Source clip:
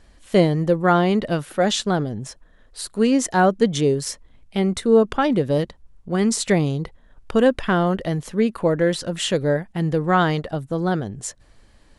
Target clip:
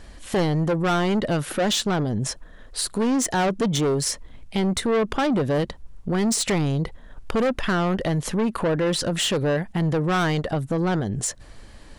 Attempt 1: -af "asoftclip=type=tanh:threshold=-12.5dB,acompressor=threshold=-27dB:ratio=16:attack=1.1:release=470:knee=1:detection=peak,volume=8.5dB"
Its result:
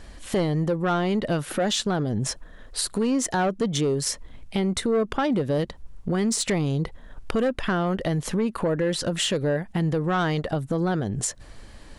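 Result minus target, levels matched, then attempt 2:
soft clip: distortion -7 dB
-af "asoftclip=type=tanh:threshold=-20.5dB,acompressor=threshold=-27dB:ratio=16:attack=1.1:release=470:knee=1:detection=peak,volume=8.5dB"

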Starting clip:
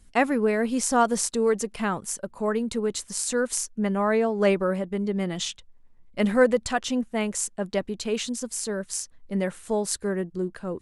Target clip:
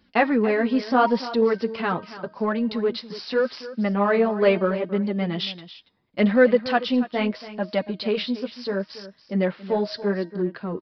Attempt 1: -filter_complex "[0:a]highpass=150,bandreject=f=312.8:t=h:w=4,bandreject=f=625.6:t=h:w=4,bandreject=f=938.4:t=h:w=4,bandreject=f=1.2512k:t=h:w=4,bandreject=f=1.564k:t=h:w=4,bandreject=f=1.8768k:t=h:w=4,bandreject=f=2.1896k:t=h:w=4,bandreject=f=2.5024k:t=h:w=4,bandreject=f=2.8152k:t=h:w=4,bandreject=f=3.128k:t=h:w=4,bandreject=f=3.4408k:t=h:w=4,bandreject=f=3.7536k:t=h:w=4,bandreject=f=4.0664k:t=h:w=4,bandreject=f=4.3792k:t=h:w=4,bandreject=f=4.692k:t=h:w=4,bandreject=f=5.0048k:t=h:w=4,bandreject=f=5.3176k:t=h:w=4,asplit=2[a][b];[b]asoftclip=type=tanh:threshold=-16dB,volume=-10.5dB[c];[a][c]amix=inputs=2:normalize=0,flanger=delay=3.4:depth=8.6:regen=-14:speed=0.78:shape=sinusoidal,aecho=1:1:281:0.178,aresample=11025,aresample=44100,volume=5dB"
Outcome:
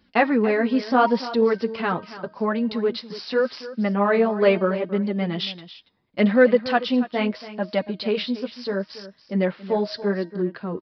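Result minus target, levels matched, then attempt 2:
soft clip: distortion -8 dB
-filter_complex "[0:a]highpass=150,bandreject=f=312.8:t=h:w=4,bandreject=f=625.6:t=h:w=4,bandreject=f=938.4:t=h:w=4,bandreject=f=1.2512k:t=h:w=4,bandreject=f=1.564k:t=h:w=4,bandreject=f=1.8768k:t=h:w=4,bandreject=f=2.1896k:t=h:w=4,bandreject=f=2.5024k:t=h:w=4,bandreject=f=2.8152k:t=h:w=4,bandreject=f=3.128k:t=h:w=4,bandreject=f=3.4408k:t=h:w=4,bandreject=f=3.7536k:t=h:w=4,bandreject=f=4.0664k:t=h:w=4,bandreject=f=4.3792k:t=h:w=4,bandreject=f=4.692k:t=h:w=4,bandreject=f=5.0048k:t=h:w=4,bandreject=f=5.3176k:t=h:w=4,asplit=2[a][b];[b]asoftclip=type=tanh:threshold=-25.5dB,volume=-10.5dB[c];[a][c]amix=inputs=2:normalize=0,flanger=delay=3.4:depth=8.6:regen=-14:speed=0.78:shape=sinusoidal,aecho=1:1:281:0.178,aresample=11025,aresample=44100,volume=5dB"

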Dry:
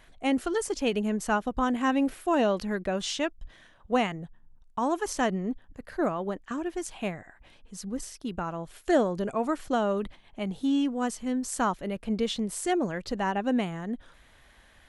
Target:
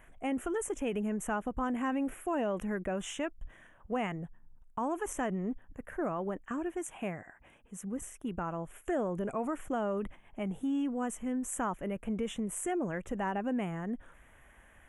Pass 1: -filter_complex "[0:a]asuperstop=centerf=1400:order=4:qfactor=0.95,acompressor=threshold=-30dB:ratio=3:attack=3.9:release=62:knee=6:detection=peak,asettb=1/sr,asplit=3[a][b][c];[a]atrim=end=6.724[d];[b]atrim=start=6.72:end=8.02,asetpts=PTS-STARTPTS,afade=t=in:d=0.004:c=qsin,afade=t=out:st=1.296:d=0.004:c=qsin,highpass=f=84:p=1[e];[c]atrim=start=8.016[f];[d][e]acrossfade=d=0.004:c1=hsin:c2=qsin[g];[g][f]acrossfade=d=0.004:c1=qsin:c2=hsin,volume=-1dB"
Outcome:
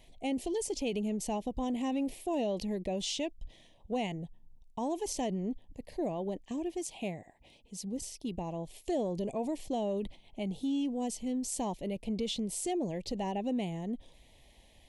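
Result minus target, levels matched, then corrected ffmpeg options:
4000 Hz band +8.5 dB
-filter_complex "[0:a]asuperstop=centerf=4500:order=4:qfactor=0.95,acompressor=threshold=-30dB:ratio=3:attack=3.9:release=62:knee=6:detection=peak,asettb=1/sr,asplit=3[a][b][c];[a]atrim=end=6.724[d];[b]atrim=start=6.72:end=8.02,asetpts=PTS-STARTPTS,afade=t=in:d=0.004:c=qsin,afade=t=out:st=1.296:d=0.004:c=qsin,highpass=f=84:p=1[e];[c]atrim=start=8.016[f];[d][e]acrossfade=d=0.004:c1=hsin:c2=qsin[g];[g][f]acrossfade=d=0.004:c1=qsin:c2=hsin,volume=-1dB"

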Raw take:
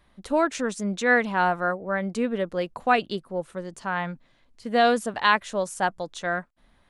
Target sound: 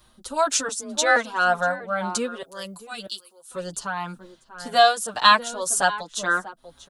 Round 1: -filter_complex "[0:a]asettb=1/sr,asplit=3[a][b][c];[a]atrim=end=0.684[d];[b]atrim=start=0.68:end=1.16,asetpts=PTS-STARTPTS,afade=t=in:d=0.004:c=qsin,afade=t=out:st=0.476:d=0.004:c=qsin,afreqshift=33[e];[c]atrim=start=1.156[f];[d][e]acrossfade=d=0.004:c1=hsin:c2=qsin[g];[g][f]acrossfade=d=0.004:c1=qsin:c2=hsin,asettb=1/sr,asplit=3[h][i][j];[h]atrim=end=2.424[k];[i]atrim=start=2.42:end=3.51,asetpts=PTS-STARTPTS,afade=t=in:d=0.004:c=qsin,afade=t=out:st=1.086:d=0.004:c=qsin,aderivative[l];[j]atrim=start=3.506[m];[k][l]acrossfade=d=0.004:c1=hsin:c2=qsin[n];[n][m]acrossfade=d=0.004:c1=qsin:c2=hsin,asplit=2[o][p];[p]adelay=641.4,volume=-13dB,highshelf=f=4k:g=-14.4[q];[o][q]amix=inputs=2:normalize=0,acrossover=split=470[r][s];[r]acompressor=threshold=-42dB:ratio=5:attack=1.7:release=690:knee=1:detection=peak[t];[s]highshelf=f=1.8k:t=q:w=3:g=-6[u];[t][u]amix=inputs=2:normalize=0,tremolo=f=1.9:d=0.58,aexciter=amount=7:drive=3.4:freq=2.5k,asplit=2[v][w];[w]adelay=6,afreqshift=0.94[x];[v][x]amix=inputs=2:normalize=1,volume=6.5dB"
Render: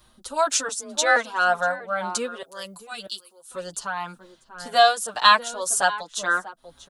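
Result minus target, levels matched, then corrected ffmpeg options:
compressor: peak gain reduction +7 dB
-filter_complex "[0:a]asettb=1/sr,asplit=3[a][b][c];[a]atrim=end=0.684[d];[b]atrim=start=0.68:end=1.16,asetpts=PTS-STARTPTS,afade=t=in:d=0.004:c=qsin,afade=t=out:st=0.476:d=0.004:c=qsin,afreqshift=33[e];[c]atrim=start=1.156[f];[d][e]acrossfade=d=0.004:c1=hsin:c2=qsin[g];[g][f]acrossfade=d=0.004:c1=qsin:c2=hsin,asettb=1/sr,asplit=3[h][i][j];[h]atrim=end=2.424[k];[i]atrim=start=2.42:end=3.51,asetpts=PTS-STARTPTS,afade=t=in:d=0.004:c=qsin,afade=t=out:st=1.086:d=0.004:c=qsin,aderivative[l];[j]atrim=start=3.506[m];[k][l]acrossfade=d=0.004:c1=hsin:c2=qsin[n];[n][m]acrossfade=d=0.004:c1=qsin:c2=hsin,asplit=2[o][p];[p]adelay=641.4,volume=-13dB,highshelf=f=4k:g=-14.4[q];[o][q]amix=inputs=2:normalize=0,acrossover=split=470[r][s];[r]acompressor=threshold=-33.5dB:ratio=5:attack=1.7:release=690:knee=1:detection=peak[t];[s]highshelf=f=1.8k:t=q:w=3:g=-6[u];[t][u]amix=inputs=2:normalize=0,tremolo=f=1.9:d=0.58,aexciter=amount=7:drive=3.4:freq=2.5k,asplit=2[v][w];[w]adelay=6,afreqshift=0.94[x];[v][x]amix=inputs=2:normalize=1,volume=6.5dB"

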